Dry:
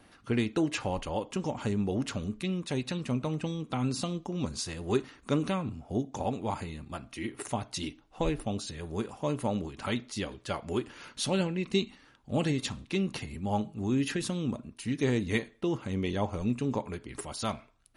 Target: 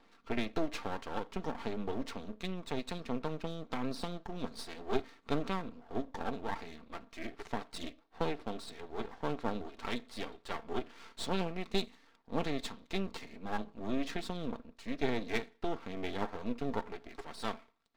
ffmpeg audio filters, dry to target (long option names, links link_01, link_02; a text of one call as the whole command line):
ffmpeg -i in.wav -af "highpass=300,equalizer=frequency=600:width_type=q:width=4:gain=-7,equalizer=frequency=1600:width_type=q:width=4:gain=-7,equalizer=frequency=2800:width_type=q:width=4:gain=-9,lowpass=frequency=4300:width=0.5412,lowpass=frequency=4300:width=1.3066,aeval=exprs='max(val(0),0)':channel_layout=same,aecho=1:1:4.4:0.32,volume=2dB" out.wav